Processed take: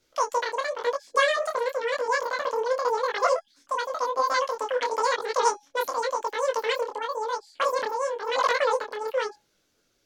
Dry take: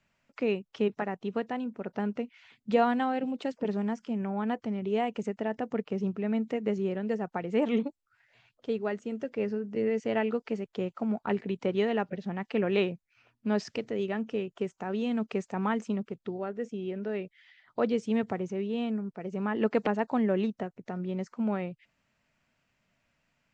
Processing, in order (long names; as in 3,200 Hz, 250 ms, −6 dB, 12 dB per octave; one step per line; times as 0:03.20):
hum removal 356.2 Hz, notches 33
wrong playback speed 33 rpm record played at 78 rpm
micro pitch shift up and down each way 33 cents
level +8 dB